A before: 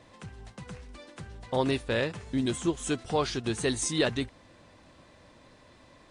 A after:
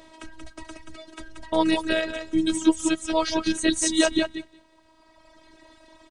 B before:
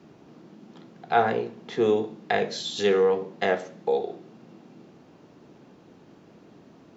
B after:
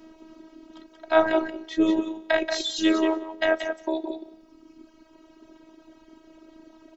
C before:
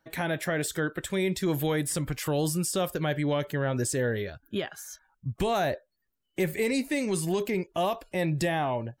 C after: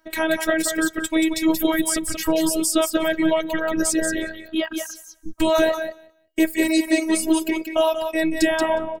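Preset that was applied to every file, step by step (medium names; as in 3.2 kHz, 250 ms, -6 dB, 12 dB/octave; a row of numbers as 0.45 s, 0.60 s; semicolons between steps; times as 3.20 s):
on a send: feedback delay 181 ms, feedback 19%, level -4 dB; on the sum: reverb removal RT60 1.9 s; robot voice 320 Hz; peak normalisation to -3 dBFS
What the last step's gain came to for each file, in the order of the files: +8.5 dB, +5.5 dB, +11.0 dB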